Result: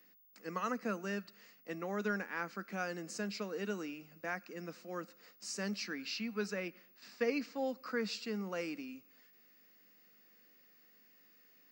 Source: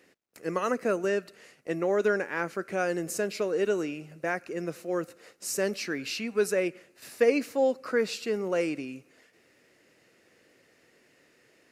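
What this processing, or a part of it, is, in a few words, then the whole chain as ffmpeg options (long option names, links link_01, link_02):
old television with a line whistle: -filter_complex "[0:a]asettb=1/sr,asplit=3[link_01][link_02][link_03];[link_01]atrim=end=6.054[link_04];[link_02]atrim=start=6.05:end=7.67,asetpts=PTS-STARTPTS,afade=type=in:duration=0.004:curve=qsin,afade=type=out:start_time=1.616:duration=0.004:curve=qsin,lowpass=6500[link_05];[link_03]atrim=start=7.666[link_06];[link_04][link_05]acrossfade=duration=0.004:curve1=hsin:curve2=qsin[link_07];[link_07][link_06]acrossfade=duration=0.004:curve1=qsin:curve2=hsin,highpass=frequency=190:width=0.5412,highpass=frequency=190:width=1.3066,equalizer=frequency=200:width_type=q:width=4:gain=9,equalizer=frequency=380:width_type=q:width=4:gain=-9,equalizer=frequency=580:width_type=q:width=4:gain=-7,equalizer=frequency=1200:width_type=q:width=4:gain=3,equalizer=frequency=4800:width_type=q:width=4:gain=6,lowpass=frequency=7300:width=0.5412,lowpass=frequency=7300:width=1.3066,aeval=exprs='val(0)+0.00178*sin(2*PI*15625*n/s)':channel_layout=same,volume=-8dB"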